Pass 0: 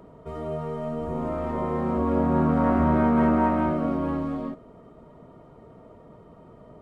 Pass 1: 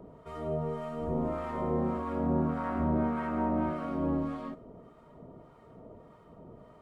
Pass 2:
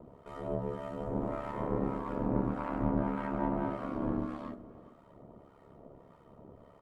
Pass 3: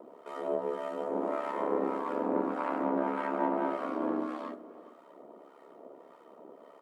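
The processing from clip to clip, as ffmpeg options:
-filter_complex "[0:a]acompressor=threshold=-24dB:ratio=4,acrossover=split=880[a][b];[a]aeval=exprs='val(0)*(1-0.7/2+0.7/2*cos(2*PI*1.7*n/s))':c=same[c];[b]aeval=exprs='val(0)*(1-0.7/2-0.7/2*cos(2*PI*1.7*n/s))':c=same[d];[c][d]amix=inputs=2:normalize=0"
-filter_complex "[0:a]aeval=exprs='0.15*(cos(1*acos(clip(val(0)/0.15,-1,1)))-cos(1*PI/2))+0.0168*(cos(4*acos(clip(val(0)/0.15,-1,1)))-cos(4*PI/2))':c=same,aeval=exprs='val(0)*sin(2*PI*35*n/s)':c=same,asplit=2[a][b];[b]adelay=419.8,volume=-18dB,highshelf=f=4k:g=-9.45[c];[a][c]amix=inputs=2:normalize=0"
-af "highpass=f=290:w=0.5412,highpass=f=290:w=1.3066,volume=5dB"

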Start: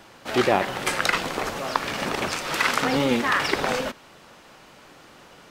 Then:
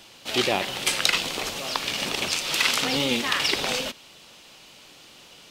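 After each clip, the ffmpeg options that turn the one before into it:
-af "highshelf=f=2.2k:t=q:w=1.5:g=9,volume=-4.5dB"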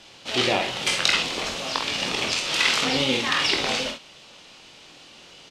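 -filter_complex "[0:a]lowpass=7.1k,asplit=2[a][b];[b]aecho=0:1:23|49|67:0.501|0.422|0.335[c];[a][c]amix=inputs=2:normalize=0"

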